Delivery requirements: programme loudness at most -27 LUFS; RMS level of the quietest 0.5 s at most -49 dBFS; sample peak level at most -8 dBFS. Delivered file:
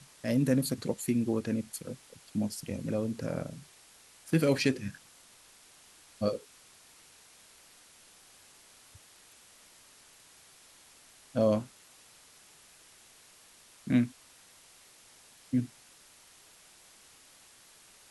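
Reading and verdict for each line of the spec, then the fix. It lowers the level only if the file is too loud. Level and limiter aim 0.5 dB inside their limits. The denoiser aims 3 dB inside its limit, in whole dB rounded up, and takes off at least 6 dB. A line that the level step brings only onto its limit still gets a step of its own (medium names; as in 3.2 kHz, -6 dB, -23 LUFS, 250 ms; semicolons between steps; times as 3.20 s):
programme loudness -31.5 LUFS: pass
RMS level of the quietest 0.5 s -58 dBFS: pass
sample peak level -13.0 dBFS: pass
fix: none needed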